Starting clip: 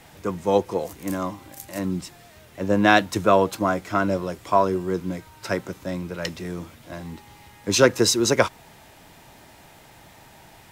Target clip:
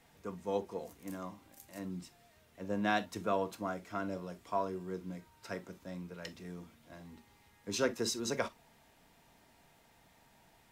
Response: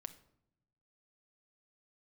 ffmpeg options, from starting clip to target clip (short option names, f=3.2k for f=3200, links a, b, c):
-filter_complex "[1:a]atrim=start_sample=2205,atrim=end_sample=3969,asetrate=57330,aresample=44100[a];[0:a][a]afir=irnorm=-1:irlink=0,volume=-9dB"